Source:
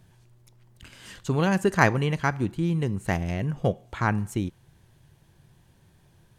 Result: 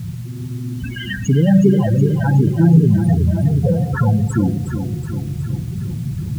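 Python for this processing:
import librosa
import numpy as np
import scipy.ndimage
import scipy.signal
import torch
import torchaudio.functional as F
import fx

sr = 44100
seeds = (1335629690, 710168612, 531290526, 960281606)

p1 = fx.recorder_agc(x, sr, target_db=-9.5, rise_db_per_s=6.9, max_gain_db=30)
p2 = fx.power_curve(p1, sr, exponent=0.35)
p3 = fx.rev_spring(p2, sr, rt60_s=1.6, pass_ms=(36,), chirp_ms=65, drr_db=3.5)
p4 = fx.spec_topn(p3, sr, count=8)
p5 = fx.quant_dither(p4, sr, seeds[0], bits=6, dither='triangular')
p6 = p4 + F.gain(torch.from_numpy(p5), -3.0).numpy()
p7 = scipy.signal.sosfilt(scipy.signal.butter(2, 78.0, 'highpass', fs=sr, output='sos'), p6)
p8 = fx.high_shelf(p7, sr, hz=9200.0, db=-5.5)
p9 = p8 + fx.echo_feedback(p8, sr, ms=368, feedback_pct=56, wet_db=-8.0, dry=0)
y = F.gain(torch.from_numpy(p9), -7.0).numpy()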